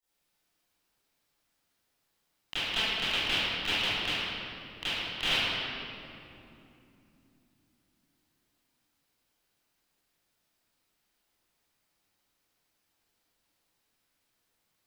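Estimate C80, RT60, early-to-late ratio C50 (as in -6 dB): -4.5 dB, 2.9 s, -8.0 dB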